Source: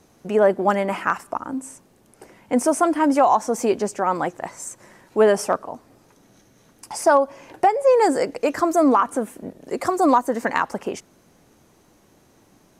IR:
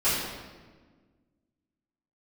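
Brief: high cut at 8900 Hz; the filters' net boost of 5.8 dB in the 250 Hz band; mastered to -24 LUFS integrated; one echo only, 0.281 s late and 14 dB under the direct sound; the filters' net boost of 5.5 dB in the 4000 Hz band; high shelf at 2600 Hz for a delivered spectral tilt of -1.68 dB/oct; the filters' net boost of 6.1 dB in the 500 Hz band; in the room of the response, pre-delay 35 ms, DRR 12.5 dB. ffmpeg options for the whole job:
-filter_complex "[0:a]lowpass=8.9k,equalizer=f=250:t=o:g=5,equalizer=f=500:t=o:g=6,highshelf=f=2.6k:g=4,equalizer=f=4k:t=o:g=4,aecho=1:1:281:0.2,asplit=2[a][b];[1:a]atrim=start_sample=2205,adelay=35[c];[b][c]afir=irnorm=-1:irlink=0,volume=-26.5dB[d];[a][d]amix=inputs=2:normalize=0,volume=-9dB"

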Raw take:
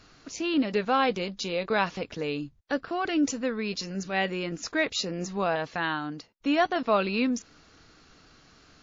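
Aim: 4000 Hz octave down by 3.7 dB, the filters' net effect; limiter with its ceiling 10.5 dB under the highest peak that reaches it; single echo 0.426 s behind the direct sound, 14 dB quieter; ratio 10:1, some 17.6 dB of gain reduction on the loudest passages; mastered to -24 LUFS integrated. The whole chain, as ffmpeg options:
-af "equalizer=f=4k:t=o:g=-5,acompressor=threshold=-38dB:ratio=10,alimiter=level_in=9.5dB:limit=-24dB:level=0:latency=1,volume=-9.5dB,aecho=1:1:426:0.2,volume=19.5dB"

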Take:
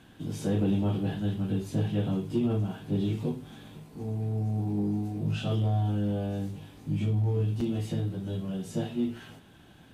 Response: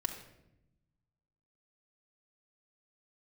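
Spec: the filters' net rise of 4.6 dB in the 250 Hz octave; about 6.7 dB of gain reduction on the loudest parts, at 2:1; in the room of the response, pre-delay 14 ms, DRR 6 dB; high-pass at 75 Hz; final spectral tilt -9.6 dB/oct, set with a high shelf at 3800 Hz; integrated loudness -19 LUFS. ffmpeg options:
-filter_complex "[0:a]highpass=75,equalizer=f=250:t=o:g=6,highshelf=f=3.8k:g=8.5,acompressor=threshold=-31dB:ratio=2,asplit=2[a][b];[1:a]atrim=start_sample=2205,adelay=14[c];[b][c]afir=irnorm=-1:irlink=0,volume=-7dB[d];[a][d]amix=inputs=2:normalize=0,volume=11.5dB"

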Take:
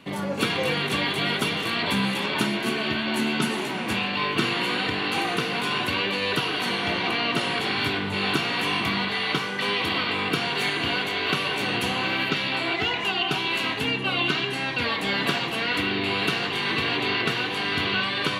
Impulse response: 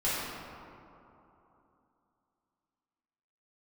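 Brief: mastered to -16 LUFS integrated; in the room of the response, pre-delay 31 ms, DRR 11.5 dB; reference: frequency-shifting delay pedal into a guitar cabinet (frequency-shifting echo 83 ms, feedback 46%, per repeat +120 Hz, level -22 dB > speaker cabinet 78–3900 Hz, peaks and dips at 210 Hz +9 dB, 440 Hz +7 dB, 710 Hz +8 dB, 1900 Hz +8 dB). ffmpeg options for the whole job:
-filter_complex "[0:a]asplit=2[a][b];[1:a]atrim=start_sample=2205,adelay=31[c];[b][c]afir=irnorm=-1:irlink=0,volume=-21.5dB[d];[a][d]amix=inputs=2:normalize=0,asplit=4[e][f][g][h];[f]adelay=83,afreqshift=120,volume=-22dB[i];[g]adelay=166,afreqshift=240,volume=-28.7dB[j];[h]adelay=249,afreqshift=360,volume=-35.5dB[k];[e][i][j][k]amix=inputs=4:normalize=0,highpass=78,equalizer=f=210:t=q:w=4:g=9,equalizer=f=440:t=q:w=4:g=7,equalizer=f=710:t=q:w=4:g=8,equalizer=f=1.9k:t=q:w=4:g=8,lowpass=f=3.9k:w=0.5412,lowpass=f=3.9k:w=1.3066,volume=5dB"

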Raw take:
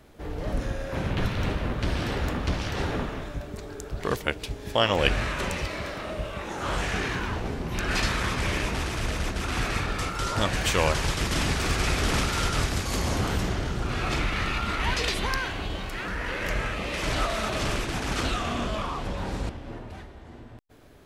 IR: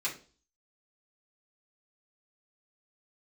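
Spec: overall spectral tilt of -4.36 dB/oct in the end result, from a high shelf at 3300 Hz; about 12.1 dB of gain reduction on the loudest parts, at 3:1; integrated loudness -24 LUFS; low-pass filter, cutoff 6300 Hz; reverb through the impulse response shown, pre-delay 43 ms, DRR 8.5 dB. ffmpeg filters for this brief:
-filter_complex "[0:a]lowpass=6.3k,highshelf=f=3.3k:g=3,acompressor=threshold=-33dB:ratio=3,asplit=2[a][b];[1:a]atrim=start_sample=2205,adelay=43[c];[b][c]afir=irnorm=-1:irlink=0,volume=-13.5dB[d];[a][d]amix=inputs=2:normalize=0,volume=10.5dB"

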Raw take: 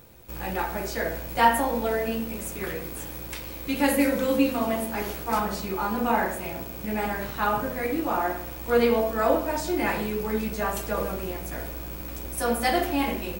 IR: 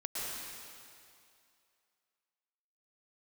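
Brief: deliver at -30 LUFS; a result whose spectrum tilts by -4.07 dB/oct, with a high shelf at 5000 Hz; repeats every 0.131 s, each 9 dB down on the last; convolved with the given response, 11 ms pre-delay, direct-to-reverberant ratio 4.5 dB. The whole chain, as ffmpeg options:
-filter_complex "[0:a]highshelf=f=5k:g=-3.5,aecho=1:1:131|262|393|524:0.355|0.124|0.0435|0.0152,asplit=2[a][b];[1:a]atrim=start_sample=2205,adelay=11[c];[b][c]afir=irnorm=-1:irlink=0,volume=-8dB[d];[a][d]amix=inputs=2:normalize=0,volume=-4.5dB"

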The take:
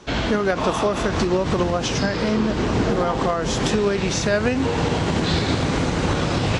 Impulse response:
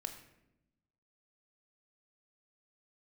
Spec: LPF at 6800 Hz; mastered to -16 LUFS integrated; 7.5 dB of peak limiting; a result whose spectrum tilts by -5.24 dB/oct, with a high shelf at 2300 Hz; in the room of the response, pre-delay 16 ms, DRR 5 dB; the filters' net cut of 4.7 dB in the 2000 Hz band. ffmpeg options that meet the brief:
-filter_complex "[0:a]lowpass=6.8k,equalizer=f=2k:t=o:g=-8.5,highshelf=f=2.3k:g=4,alimiter=limit=-16.5dB:level=0:latency=1,asplit=2[a][b];[1:a]atrim=start_sample=2205,adelay=16[c];[b][c]afir=irnorm=-1:irlink=0,volume=-3.5dB[d];[a][d]amix=inputs=2:normalize=0,volume=8.5dB"

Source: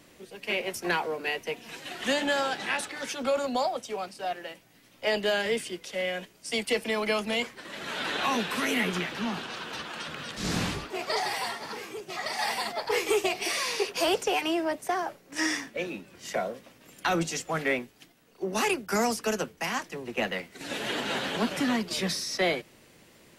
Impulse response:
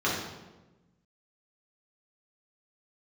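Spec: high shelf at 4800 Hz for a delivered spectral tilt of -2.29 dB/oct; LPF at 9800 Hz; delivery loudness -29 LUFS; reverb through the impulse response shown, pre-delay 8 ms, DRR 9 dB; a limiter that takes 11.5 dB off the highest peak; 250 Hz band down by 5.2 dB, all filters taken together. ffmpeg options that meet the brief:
-filter_complex "[0:a]lowpass=9.8k,equalizer=f=250:t=o:g=-7,highshelf=f=4.8k:g=3.5,alimiter=level_in=2.5dB:limit=-24dB:level=0:latency=1,volume=-2.5dB,asplit=2[a][b];[1:a]atrim=start_sample=2205,adelay=8[c];[b][c]afir=irnorm=-1:irlink=0,volume=-21.5dB[d];[a][d]amix=inputs=2:normalize=0,volume=6dB"

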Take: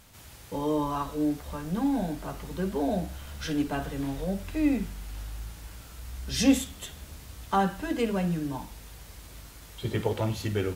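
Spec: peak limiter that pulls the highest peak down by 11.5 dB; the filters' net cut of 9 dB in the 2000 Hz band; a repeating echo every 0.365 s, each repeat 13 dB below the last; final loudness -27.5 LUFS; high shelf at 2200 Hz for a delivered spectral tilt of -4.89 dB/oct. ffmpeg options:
-af "equalizer=f=2k:t=o:g=-8,highshelf=f=2.2k:g=-7.5,alimiter=limit=-22dB:level=0:latency=1,aecho=1:1:365|730|1095:0.224|0.0493|0.0108,volume=5.5dB"

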